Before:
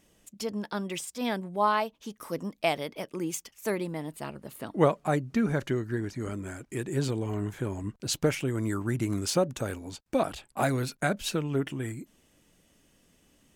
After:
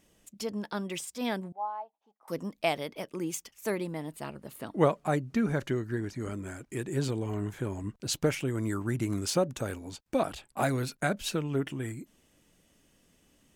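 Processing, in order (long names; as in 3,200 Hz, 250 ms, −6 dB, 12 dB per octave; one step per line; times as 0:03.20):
0:01.52–0:02.28: resonant band-pass 790 Hz, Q 9.5
level −1.5 dB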